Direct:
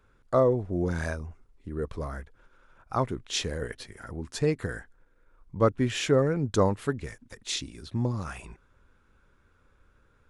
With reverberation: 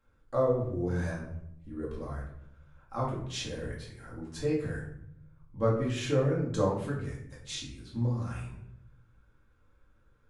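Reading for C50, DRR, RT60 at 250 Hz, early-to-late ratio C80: 4.0 dB, -5.0 dB, 1.1 s, 8.5 dB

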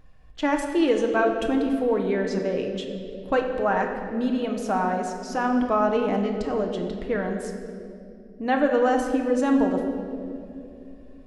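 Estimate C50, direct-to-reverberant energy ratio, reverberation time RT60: 5.0 dB, 2.0 dB, 2.8 s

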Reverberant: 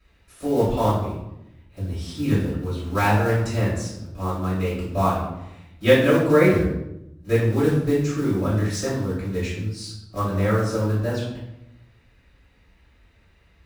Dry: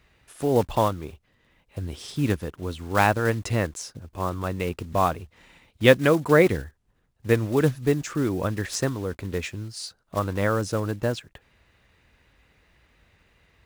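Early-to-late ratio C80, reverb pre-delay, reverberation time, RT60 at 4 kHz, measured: 6.0 dB, 3 ms, 0.85 s, 0.60 s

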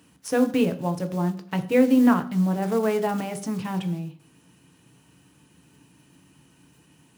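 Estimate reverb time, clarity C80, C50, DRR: 0.55 s, 18.0 dB, 15.0 dB, 7.0 dB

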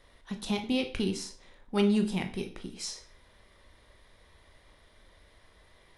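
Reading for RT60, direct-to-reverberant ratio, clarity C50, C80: 0.45 s, 5.0 dB, 11.5 dB, 16.0 dB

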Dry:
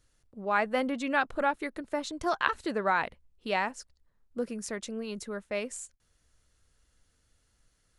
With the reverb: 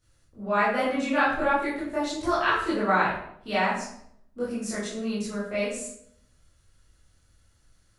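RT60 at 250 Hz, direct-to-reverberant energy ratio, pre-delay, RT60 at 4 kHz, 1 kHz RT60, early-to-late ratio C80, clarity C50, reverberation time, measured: 0.75 s, -10.5 dB, 16 ms, 0.50 s, 0.65 s, 5.5 dB, 1.5 dB, 0.70 s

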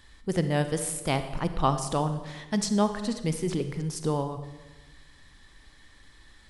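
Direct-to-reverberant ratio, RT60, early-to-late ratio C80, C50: 9.0 dB, 1.2 s, 12.0 dB, 10.0 dB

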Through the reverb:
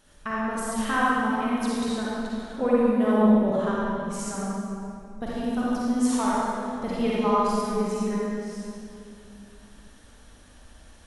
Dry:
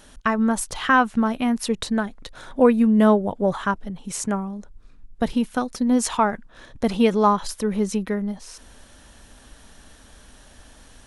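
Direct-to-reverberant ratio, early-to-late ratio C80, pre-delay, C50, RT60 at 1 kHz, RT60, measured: -7.5 dB, -3.0 dB, 38 ms, -6.0 dB, 2.4 s, 2.5 s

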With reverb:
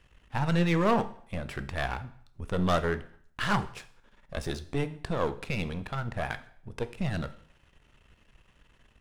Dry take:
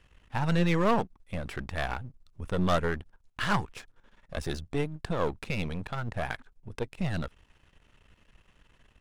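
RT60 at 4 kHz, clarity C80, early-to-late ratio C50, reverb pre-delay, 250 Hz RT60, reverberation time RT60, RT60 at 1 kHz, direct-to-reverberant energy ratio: 0.55 s, 19.0 dB, 16.0 dB, 11 ms, 0.55 s, 0.60 s, 0.60 s, 11.0 dB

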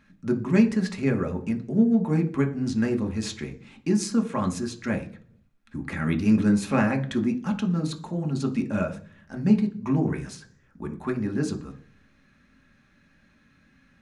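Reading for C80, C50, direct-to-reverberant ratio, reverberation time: 18.5 dB, 14.0 dB, 3.0 dB, 0.45 s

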